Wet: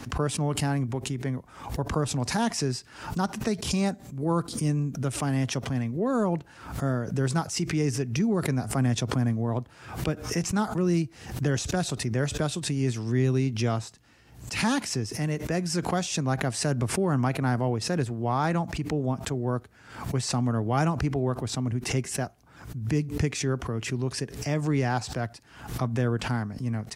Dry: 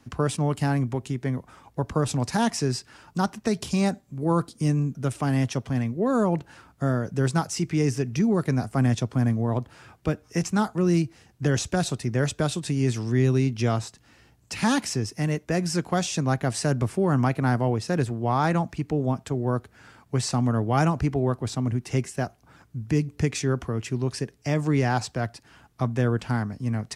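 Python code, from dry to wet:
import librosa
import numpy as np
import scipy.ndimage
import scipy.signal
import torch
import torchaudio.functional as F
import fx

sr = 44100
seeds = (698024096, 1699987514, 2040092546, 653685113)

y = fx.pre_swell(x, sr, db_per_s=91.0)
y = F.gain(torch.from_numpy(y), -3.0).numpy()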